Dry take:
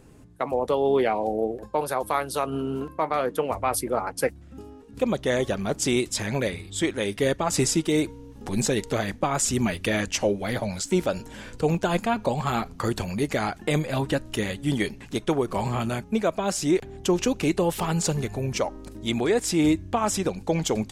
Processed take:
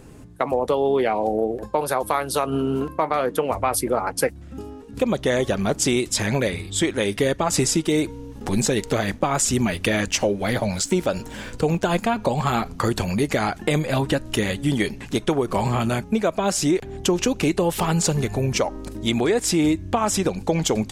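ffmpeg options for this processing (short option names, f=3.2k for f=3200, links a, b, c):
-filter_complex "[0:a]asettb=1/sr,asplit=3[a][b][c];[a]atrim=end=8.394[d];[b]atrim=start=8.39:end=12.19,asetpts=PTS-STARTPTS,afade=t=in:d=0.004:c=qsin,afade=t=out:st=3.796:d=0.004:c=qsin,aeval=exprs='sgn(val(0))*max(abs(val(0))-0.0015,0)':c=same[e];[c]atrim=start=12.186[f];[d][e]acrossfade=d=0.004:c1=hsin:c2=qsin[g];[g][f]acrossfade=d=0.004:c1=qsin:c2=hsin,acompressor=threshold=-25dB:ratio=3,volume=7dB"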